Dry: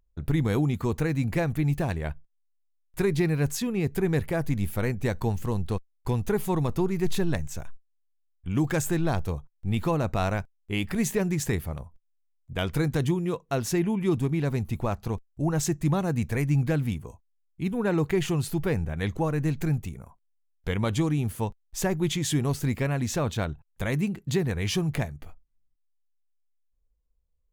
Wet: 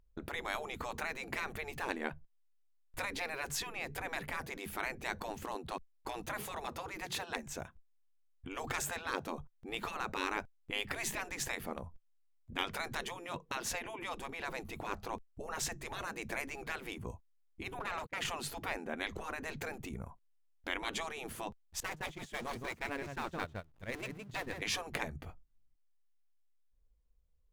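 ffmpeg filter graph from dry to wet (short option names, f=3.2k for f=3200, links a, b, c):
-filter_complex "[0:a]asettb=1/sr,asplit=3[a][b][c];[a]atrim=end=17.794[d];[b]atrim=start=17.79:end=18.25,asetpts=PTS-STARTPTS,afade=t=in:d=0.004:c=qsin,afade=t=out:st=0.456:d=0.004:c=qsin,aeval=exprs='clip(val(0),-1,0.0422)':c=same,agate=range=-45dB:threshold=-30dB:ratio=16:release=100:detection=peak[e];[c]atrim=start=18.246[f];[d][e]acrossfade=d=0.004:c1=hsin:c2=qsin[g];[g][f]acrossfade=d=0.004:c1=qsin:c2=hsin,asettb=1/sr,asplit=3[h][i][j];[h]atrim=end=21.804[k];[i]atrim=start=21.8:end=24.62,asetpts=PTS-STARTPTS,afade=t=in:d=0.004:c=qsin,afade=t=out:st=2.816:d=0.004:c=qsin,aeval=exprs='val(0)+0.5*0.0251*sgn(val(0))':c=same,agate=range=-28dB:threshold=-24dB:ratio=16:release=100:detection=peak,aecho=1:1:164:0.316,atrim=end_sample=124362[l];[j]atrim=start=24.616[m];[k][l]acrossfade=d=0.004:c1=hsin:c2=qsin[n];[n][m]acrossfade=d=0.004:c1=qsin:c2=hsin,afftfilt=real='re*lt(hypot(re,im),0.0891)':imag='im*lt(hypot(re,im),0.0891)':win_size=1024:overlap=0.75,highshelf=f=5.5k:g=-8.5,volume=1dB"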